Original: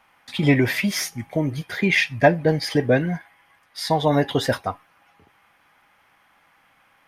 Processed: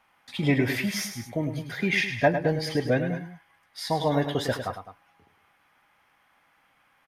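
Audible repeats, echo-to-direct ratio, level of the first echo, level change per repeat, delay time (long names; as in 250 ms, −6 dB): 2, −8.0 dB, −9.0 dB, −5.0 dB, 104 ms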